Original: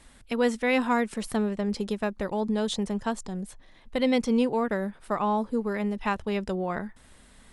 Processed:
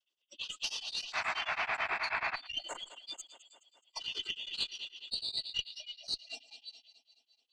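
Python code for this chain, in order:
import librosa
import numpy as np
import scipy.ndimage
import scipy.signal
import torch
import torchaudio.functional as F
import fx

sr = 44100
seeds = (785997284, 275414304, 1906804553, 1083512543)

p1 = fx.band_shuffle(x, sr, order='3412')
p2 = scipy.signal.sosfilt(scipy.signal.butter(16, 300.0, 'highpass', fs=sr, output='sos'), p1)
p3 = fx.noise_vocoder(p2, sr, seeds[0], bands=16)
p4 = fx.noise_reduce_blind(p3, sr, reduce_db=29)
p5 = p4 + fx.echo_feedback(p4, sr, ms=209, feedback_pct=58, wet_db=-15, dry=0)
p6 = fx.spec_paint(p5, sr, seeds[1], shape='noise', start_s=1.12, length_s=1.24, low_hz=610.0, high_hz=2700.0, level_db=-31.0)
p7 = fx.over_compress(p6, sr, threshold_db=-31.0, ratio=-1.0)
p8 = p7 + 10.0 ** (-20.5 / 20.0) * np.pad(p7, (int(114 * sr / 1000.0), 0))[:len(p7)]
p9 = fx.tube_stage(p8, sr, drive_db=16.0, bias=0.55)
y = p9 * np.abs(np.cos(np.pi * 9.3 * np.arange(len(p9)) / sr))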